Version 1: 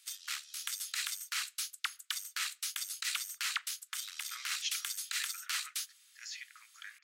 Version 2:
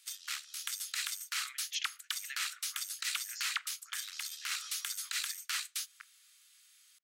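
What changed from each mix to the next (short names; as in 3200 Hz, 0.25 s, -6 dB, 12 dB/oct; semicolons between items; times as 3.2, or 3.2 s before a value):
speech: entry -2.90 s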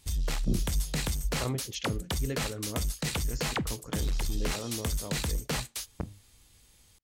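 speech: remove resonant high-pass 1800 Hz, resonance Q 1.6; master: remove elliptic high-pass 1300 Hz, stop band 70 dB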